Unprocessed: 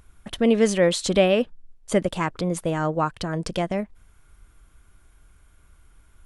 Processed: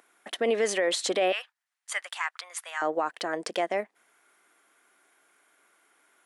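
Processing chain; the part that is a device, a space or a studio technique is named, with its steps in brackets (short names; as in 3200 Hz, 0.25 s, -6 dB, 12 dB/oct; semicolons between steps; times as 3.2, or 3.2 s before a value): 1.32–2.82 HPF 1100 Hz 24 dB/oct; laptop speaker (HPF 320 Hz 24 dB/oct; bell 740 Hz +5 dB 0.36 oct; bell 1900 Hz +6.5 dB 0.51 oct; limiter -15 dBFS, peak gain reduction 9.5 dB); gain -1.5 dB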